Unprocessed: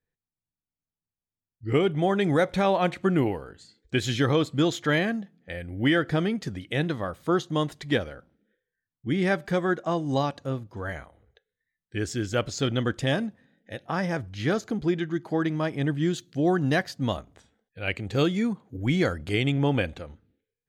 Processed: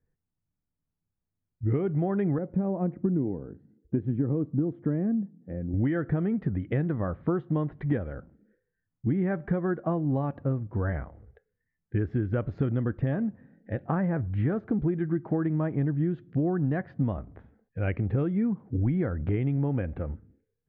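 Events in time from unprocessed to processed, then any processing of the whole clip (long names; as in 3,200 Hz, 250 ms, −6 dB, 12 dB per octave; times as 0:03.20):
0:02.38–0:05.74: resonant band-pass 240 Hz, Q 1.1
whole clip: low-pass filter 1,900 Hz 24 dB per octave; low-shelf EQ 390 Hz +12 dB; downward compressor 10 to 1, threshold −23 dBFS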